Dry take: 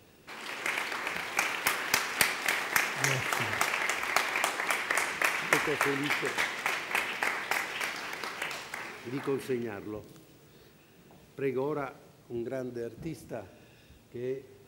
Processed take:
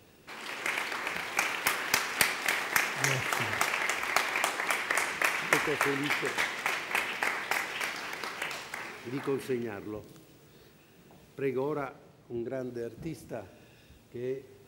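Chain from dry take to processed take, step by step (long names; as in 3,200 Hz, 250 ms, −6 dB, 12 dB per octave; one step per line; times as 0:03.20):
0:11.87–0:12.61: high-shelf EQ 3,900 Hz −7 dB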